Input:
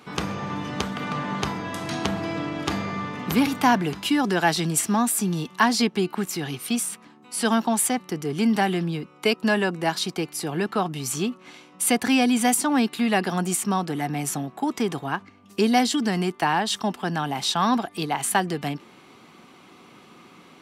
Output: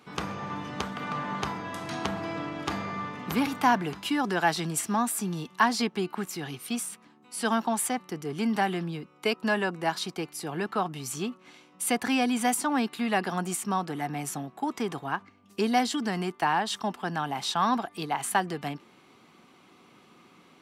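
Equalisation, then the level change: dynamic EQ 1100 Hz, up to +5 dB, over -36 dBFS, Q 0.73; -7.0 dB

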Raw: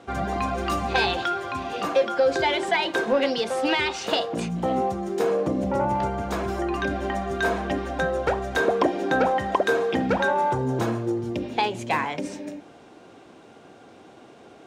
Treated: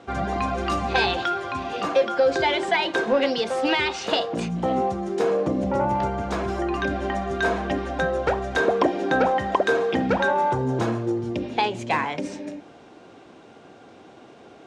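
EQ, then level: LPF 7500 Hz 12 dB/oct; +1.0 dB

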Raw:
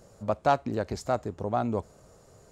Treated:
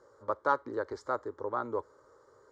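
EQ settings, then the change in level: band-pass 1100 Hz, Q 0.59; air absorption 55 m; fixed phaser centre 700 Hz, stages 6; +3.0 dB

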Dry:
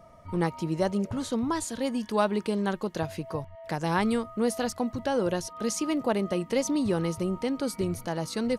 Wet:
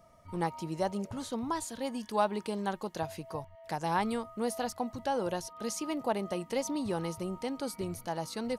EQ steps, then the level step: high shelf 3600 Hz +8.5 dB; dynamic EQ 820 Hz, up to +8 dB, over -44 dBFS, Q 1.8; dynamic EQ 7600 Hz, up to -5 dB, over -41 dBFS, Q 0.79; -8.0 dB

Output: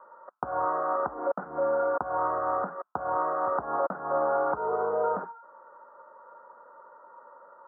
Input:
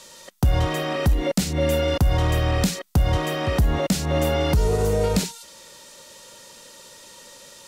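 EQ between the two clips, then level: HPF 1000 Hz 12 dB/oct; steep low-pass 1400 Hz 72 dB/oct; +7.5 dB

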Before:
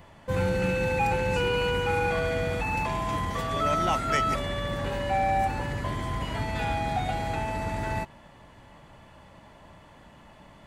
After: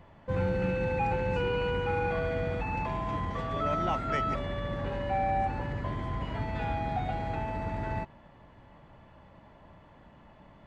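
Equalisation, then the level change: tape spacing loss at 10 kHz 23 dB; -2.0 dB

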